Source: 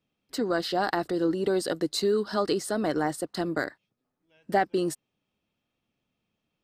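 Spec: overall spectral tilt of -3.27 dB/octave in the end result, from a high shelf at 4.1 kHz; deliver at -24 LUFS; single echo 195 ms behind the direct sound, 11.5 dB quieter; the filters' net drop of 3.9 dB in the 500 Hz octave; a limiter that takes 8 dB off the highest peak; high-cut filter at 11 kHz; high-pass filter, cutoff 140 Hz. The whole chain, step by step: high-pass 140 Hz; low-pass 11 kHz; peaking EQ 500 Hz -5.5 dB; treble shelf 4.1 kHz +8 dB; peak limiter -19.5 dBFS; delay 195 ms -11.5 dB; trim +6.5 dB

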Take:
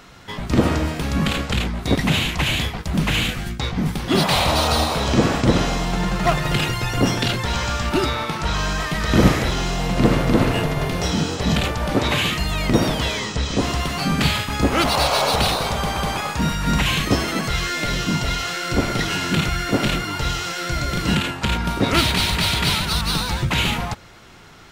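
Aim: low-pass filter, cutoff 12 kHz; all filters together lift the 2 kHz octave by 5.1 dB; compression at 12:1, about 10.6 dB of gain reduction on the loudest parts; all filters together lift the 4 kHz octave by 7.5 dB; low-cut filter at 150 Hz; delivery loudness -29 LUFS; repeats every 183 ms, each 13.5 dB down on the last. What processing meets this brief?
high-pass 150 Hz; low-pass 12 kHz; peaking EQ 2 kHz +4 dB; peaking EQ 4 kHz +8 dB; compression 12:1, threshold -21 dBFS; feedback delay 183 ms, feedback 21%, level -13.5 dB; trim -5.5 dB

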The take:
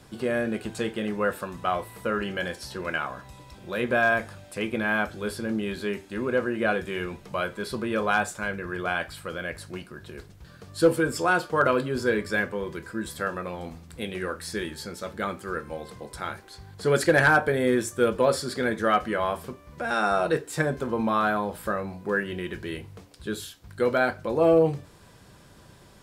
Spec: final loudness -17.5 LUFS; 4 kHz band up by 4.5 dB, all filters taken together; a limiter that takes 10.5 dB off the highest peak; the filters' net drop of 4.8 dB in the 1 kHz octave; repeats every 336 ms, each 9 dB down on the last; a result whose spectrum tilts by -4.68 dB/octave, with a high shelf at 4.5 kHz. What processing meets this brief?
peaking EQ 1 kHz -7.5 dB; peaking EQ 4 kHz +9 dB; treble shelf 4.5 kHz -5.5 dB; peak limiter -20.5 dBFS; feedback delay 336 ms, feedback 35%, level -9 dB; trim +14.5 dB

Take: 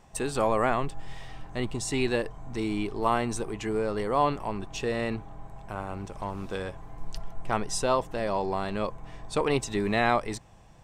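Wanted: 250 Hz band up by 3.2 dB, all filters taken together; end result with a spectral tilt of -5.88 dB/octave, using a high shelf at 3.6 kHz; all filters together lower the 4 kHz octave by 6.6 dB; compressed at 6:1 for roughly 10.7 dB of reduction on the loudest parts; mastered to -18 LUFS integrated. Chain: peaking EQ 250 Hz +4 dB; treble shelf 3.6 kHz -5.5 dB; peaking EQ 4 kHz -5 dB; compression 6:1, threshold -31 dBFS; trim +19 dB

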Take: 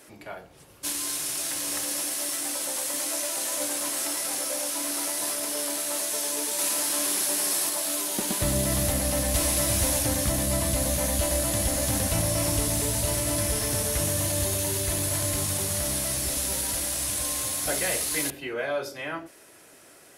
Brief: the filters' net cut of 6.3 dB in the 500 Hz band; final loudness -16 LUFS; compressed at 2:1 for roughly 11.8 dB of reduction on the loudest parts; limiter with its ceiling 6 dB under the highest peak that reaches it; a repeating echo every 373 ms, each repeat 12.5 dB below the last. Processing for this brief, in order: peaking EQ 500 Hz -8 dB; compression 2:1, threshold -44 dBFS; peak limiter -30.5 dBFS; feedback delay 373 ms, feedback 24%, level -12.5 dB; trim +22 dB

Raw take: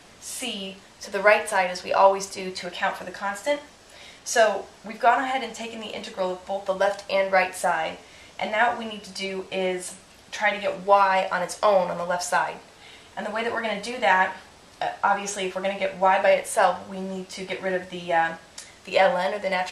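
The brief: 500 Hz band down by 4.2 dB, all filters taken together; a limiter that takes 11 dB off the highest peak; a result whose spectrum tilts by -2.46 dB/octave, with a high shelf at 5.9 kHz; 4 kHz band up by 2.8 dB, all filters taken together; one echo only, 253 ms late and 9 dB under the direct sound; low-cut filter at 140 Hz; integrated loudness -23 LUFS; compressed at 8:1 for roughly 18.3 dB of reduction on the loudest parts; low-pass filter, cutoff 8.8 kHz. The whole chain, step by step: high-pass 140 Hz; low-pass 8.8 kHz; peaking EQ 500 Hz -5.5 dB; peaking EQ 4 kHz +5.5 dB; treble shelf 5.9 kHz -3.5 dB; compression 8:1, threshold -33 dBFS; peak limiter -27 dBFS; delay 253 ms -9 dB; trim +15 dB

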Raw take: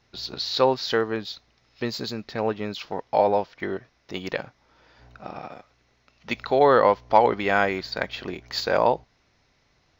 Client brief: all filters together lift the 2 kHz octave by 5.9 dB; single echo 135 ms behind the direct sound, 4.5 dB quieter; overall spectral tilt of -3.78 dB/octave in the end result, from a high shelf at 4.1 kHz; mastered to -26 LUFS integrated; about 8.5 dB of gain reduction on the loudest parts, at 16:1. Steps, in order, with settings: peaking EQ 2 kHz +7 dB; treble shelf 4.1 kHz +3.5 dB; compression 16:1, threshold -19 dBFS; delay 135 ms -4.5 dB

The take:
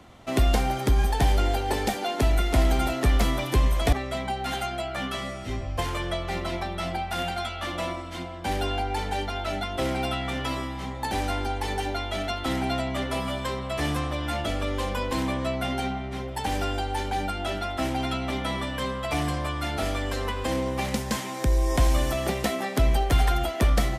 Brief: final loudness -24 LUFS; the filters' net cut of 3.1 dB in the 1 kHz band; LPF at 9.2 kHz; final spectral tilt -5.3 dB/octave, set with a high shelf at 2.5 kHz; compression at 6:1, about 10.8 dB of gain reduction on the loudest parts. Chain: low-pass 9.2 kHz; peaking EQ 1 kHz -3 dB; treble shelf 2.5 kHz -9 dB; compression 6:1, threshold -28 dBFS; trim +9.5 dB

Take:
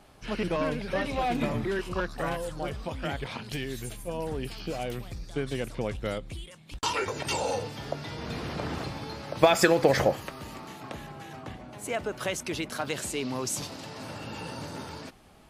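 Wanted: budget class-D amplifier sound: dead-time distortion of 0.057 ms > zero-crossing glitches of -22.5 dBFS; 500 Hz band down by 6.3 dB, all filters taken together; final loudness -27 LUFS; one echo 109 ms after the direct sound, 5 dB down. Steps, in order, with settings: peaking EQ 500 Hz -8 dB; delay 109 ms -5 dB; dead-time distortion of 0.057 ms; zero-crossing glitches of -22.5 dBFS; trim +3.5 dB

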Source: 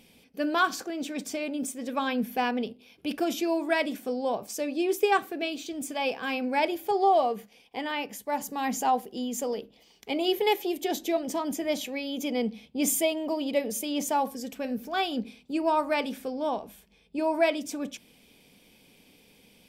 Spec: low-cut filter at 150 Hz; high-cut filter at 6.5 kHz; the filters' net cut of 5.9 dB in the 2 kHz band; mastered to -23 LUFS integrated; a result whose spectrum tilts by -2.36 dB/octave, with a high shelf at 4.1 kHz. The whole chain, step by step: high-pass 150 Hz; low-pass 6.5 kHz; peaking EQ 2 kHz -7 dB; treble shelf 4.1 kHz -4.5 dB; trim +7.5 dB

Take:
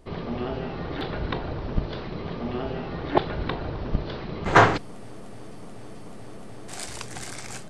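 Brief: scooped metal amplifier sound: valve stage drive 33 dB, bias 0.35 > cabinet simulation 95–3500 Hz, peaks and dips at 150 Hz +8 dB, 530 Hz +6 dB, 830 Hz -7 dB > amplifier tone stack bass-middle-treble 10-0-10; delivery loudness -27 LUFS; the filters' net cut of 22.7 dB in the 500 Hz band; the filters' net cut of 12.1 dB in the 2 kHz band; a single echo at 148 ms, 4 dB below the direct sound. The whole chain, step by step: peaking EQ 500 Hz -9 dB; peaking EQ 2 kHz -8 dB; delay 148 ms -4 dB; valve stage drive 33 dB, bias 0.35; cabinet simulation 95–3500 Hz, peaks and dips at 150 Hz +8 dB, 530 Hz +6 dB, 830 Hz -7 dB; amplifier tone stack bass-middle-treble 10-0-10; trim +24.5 dB

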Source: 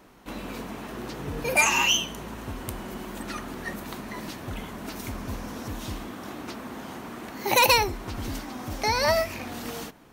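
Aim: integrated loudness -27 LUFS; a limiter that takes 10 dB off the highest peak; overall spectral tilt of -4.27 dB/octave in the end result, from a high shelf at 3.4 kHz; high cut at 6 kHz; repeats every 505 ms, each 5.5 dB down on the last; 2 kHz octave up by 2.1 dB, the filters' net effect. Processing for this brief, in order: low-pass 6 kHz; peaking EQ 2 kHz +5 dB; treble shelf 3.4 kHz -5.5 dB; peak limiter -19.5 dBFS; feedback delay 505 ms, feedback 53%, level -5.5 dB; trim +4 dB

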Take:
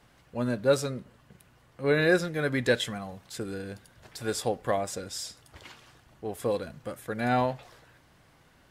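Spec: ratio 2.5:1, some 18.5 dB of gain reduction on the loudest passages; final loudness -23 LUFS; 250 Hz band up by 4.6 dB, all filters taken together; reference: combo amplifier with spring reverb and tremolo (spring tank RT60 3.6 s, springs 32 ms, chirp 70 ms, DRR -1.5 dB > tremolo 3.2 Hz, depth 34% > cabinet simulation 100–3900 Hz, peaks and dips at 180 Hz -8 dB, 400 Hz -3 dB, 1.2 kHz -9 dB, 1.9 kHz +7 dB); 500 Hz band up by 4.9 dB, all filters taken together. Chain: peaking EQ 250 Hz +6 dB; peaking EQ 500 Hz +5.5 dB; compression 2.5:1, threshold -42 dBFS; spring tank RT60 3.6 s, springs 32 ms, chirp 70 ms, DRR -1.5 dB; tremolo 3.2 Hz, depth 34%; cabinet simulation 100–3900 Hz, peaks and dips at 180 Hz -8 dB, 400 Hz -3 dB, 1.2 kHz -9 dB, 1.9 kHz +7 dB; trim +17 dB

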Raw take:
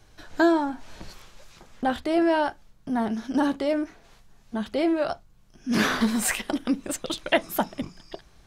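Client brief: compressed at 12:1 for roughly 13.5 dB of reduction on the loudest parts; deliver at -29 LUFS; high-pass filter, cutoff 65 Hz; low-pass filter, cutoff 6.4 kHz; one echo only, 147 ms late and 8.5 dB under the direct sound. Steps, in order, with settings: high-pass 65 Hz; low-pass 6.4 kHz; compression 12:1, threshold -29 dBFS; delay 147 ms -8.5 dB; trim +5.5 dB

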